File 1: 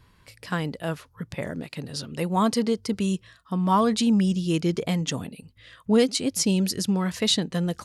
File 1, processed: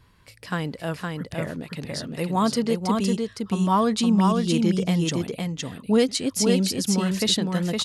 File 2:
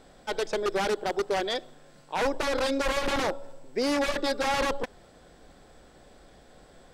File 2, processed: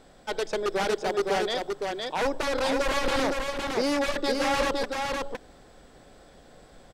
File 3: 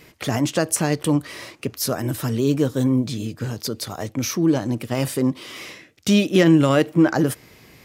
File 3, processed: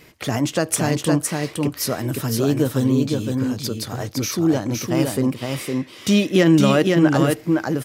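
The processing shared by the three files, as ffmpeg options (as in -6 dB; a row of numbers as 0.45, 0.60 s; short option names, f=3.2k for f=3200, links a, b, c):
-af "aecho=1:1:512:0.668"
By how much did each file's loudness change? +1.0, +1.0, +1.0 LU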